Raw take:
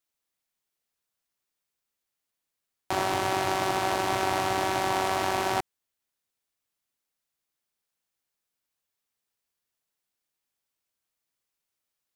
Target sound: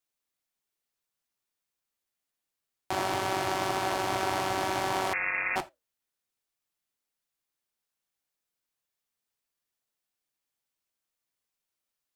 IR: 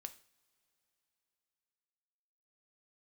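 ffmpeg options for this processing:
-filter_complex "[0:a]flanger=delay=5.2:depth=5.4:regen=-75:speed=1.8:shape=triangular,asplit=2[link_01][link_02];[1:a]atrim=start_sample=2205,atrim=end_sample=3969[link_03];[link_02][link_03]afir=irnorm=-1:irlink=0,volume=10.5dB[link_04];[link_01][link_04]amix=inputs=2:normalize=0,asettb=1/sr,asplit=3[link_05][link_06][link_07];[link_05]atrim=end=5.134[link_08];[link_06]atrim=start=5.13:end=5.56,asetpts=PTS-STARTPTS,afade=type=in:duration=0.004:curve=qsin,afade=type=out:start_time=0.426:duration=0.004:curve=qsin,lowpass=frequency=2400:width_type=q:width=0.5098,lowpass=frequency=2400:width_type=q:width=0.6013,lowpass=frequency=2400:width_type=q:width=0.9,lowpass=frequency=2400:width_type=q:width=2.563,afreqshift=-2800[link_09];[link_07]atrim=start=5.556[link_10];[link_08][link_09]acrossfade=duration=0.004:curve1=hsin:curve2=qsin[link_11];[link_11][link_10]acrossfade=duration=0.004:curve1=qsin:curve2=hsin,volume=-7dB"

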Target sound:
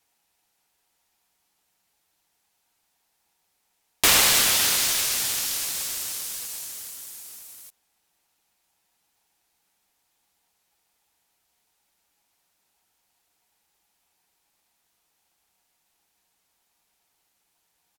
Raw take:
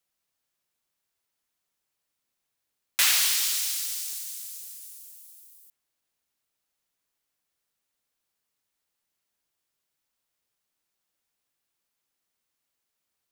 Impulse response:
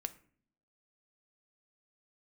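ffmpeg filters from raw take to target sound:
-filter_complex "[0:a]lowshelf=frequency=190:width_type=q:width=1.5:gain=9,aecho=1:1:5.9:0.56,asplit=2[link_01][link_02];[link_02]acompressor=threshold=-35dB:ratio=6,volume=1.5dB[link_03];[link_01][link_03]amix=inputs=2:normalize=0,asetrate=32667,aresample=44100,aeval=exprs='val(0)*sgn(sin(2*PI*830*n/s))':channel_layout=same,volume=1dB"

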